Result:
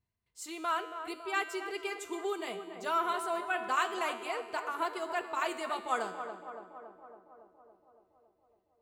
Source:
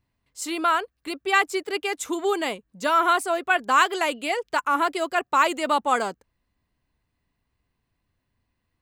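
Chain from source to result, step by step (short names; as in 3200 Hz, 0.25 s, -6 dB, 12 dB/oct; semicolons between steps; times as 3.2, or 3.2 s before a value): notch comb 280 Hz; tremolo 2.7 Hz, depth 30%; resonator 92 Hz, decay 1.4 s, harmonics all, mix 70%; tape echo 0.28 s, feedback 76%, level -7.5 dB, low-pass 1400 Hz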